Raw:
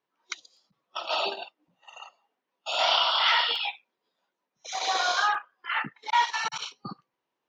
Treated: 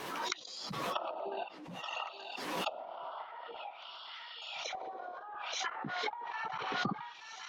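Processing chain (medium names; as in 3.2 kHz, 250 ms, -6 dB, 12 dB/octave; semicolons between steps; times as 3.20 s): random-step tremolo; compression 10:1, threshold -39 dBFS, peak gain reduction 20.5 dB; on a send: thinning echo 876 ms, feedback 61%, high-pass 550 Hz, level -14 dB; on the sum: low-pass that closes with the level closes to 430 Hz, closed at -37.5 dBFS; swell ahead of each attack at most 31 dB/s; trim +8.5 dB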